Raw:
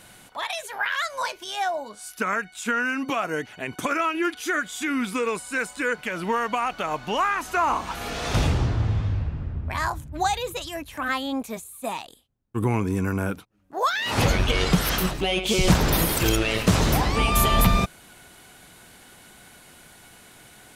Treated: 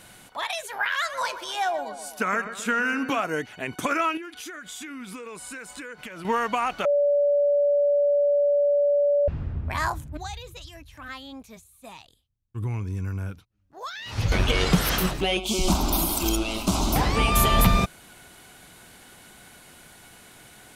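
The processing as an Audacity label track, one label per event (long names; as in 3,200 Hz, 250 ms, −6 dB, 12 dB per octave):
0.890000	3.210000	feedback echo with a low-pass in the loop 128 ms, feedback 59%, level −10 dB
4.170000	6.250000	downward compressor 20 to 1, threshold −34 dBFS
6.850000	9.280000	beep over 576 Hz −17.5 dBFS
10.170000	14.320000	drawn EQ curve 100 Hz 0 dB, 230 Hz −13 dB, 720 Hz −15 dB, 5,700 Hz −7 dB, 8,200 Hz −14 dB
15.370000	16.960000	phaser with its sweep stopped centre 480 Hz, stages 6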